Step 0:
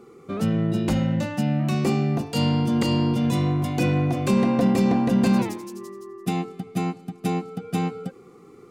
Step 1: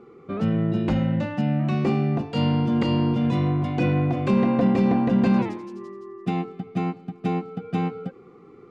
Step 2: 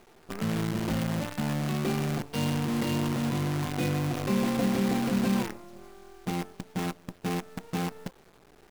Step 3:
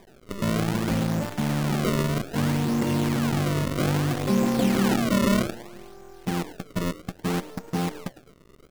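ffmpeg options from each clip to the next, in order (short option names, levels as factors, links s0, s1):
-af "lowpass=2900"
-af "acrusher=bits=5:dc=4:mix=0:aa=0.000001,volume=0.447"
-filter_complex "[0:a]highshelf=f=3900:g=-11.5,asplit=4[s0][s1][s2][s3];[s1]adelay=104,afreqshift=130,volume=0.133[s4];[s2]adelay=208,afreqshift=260,volume=0.0479[s5];[s3]adelay=312,afreqshift=390,volume=0.0174[s6];[s0][s4][s5][s6]amix=inputs=4:normalize=0,acrusher=samples=31:mix=1:aa=0.000001:lfo=1:lforange=49.6:lforate=0.62,volume=1.68"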